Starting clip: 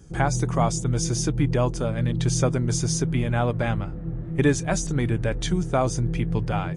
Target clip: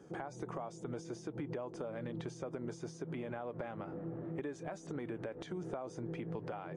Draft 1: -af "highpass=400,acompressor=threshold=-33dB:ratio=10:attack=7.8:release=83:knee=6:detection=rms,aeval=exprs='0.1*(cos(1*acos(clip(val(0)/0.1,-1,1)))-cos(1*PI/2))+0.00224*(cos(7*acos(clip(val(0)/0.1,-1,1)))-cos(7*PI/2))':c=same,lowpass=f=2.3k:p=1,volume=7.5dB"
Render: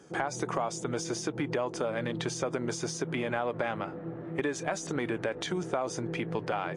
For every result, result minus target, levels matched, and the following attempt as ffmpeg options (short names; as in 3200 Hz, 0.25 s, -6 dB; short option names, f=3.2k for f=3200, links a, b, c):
compressor: peak gain reduction -8 dB; 2000 Hz band +5.5 dB
-af "highpass=400,acompressor=threshold=-42dB:ratio=10:attack=7.8:release=83:knee=6:detection=rms,aeval=exprs='0.1*(cos(1*acos(clip(val(0)/0.1,-1,1)))-cos(1*PI/2))+0.00224*(cos(7*acos(clip(val(0)/0.1,-1,1)))-cos(7*PI/2))':c=same,lowpass=f=2.3k:p=1,volume=7.5dB"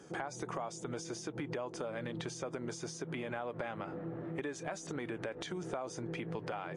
2000 Hz band +5.0 dB
-af "highpass=400,acompressor=threshold=-42dB:ratio=10:attack=7.8:release=83:knee=6:detection=rms,aeval=exprs='0.1*(cos(1*acos(clip(val(0)/0.1,-1,1)))-cos(1*PI/2))+0.00224*(cos(7*acos(clip(val(0)/0.1,-1,1)))-cos(7*PI/2))':c=same,lowpass=f=640:p=1,volume=7.5dB"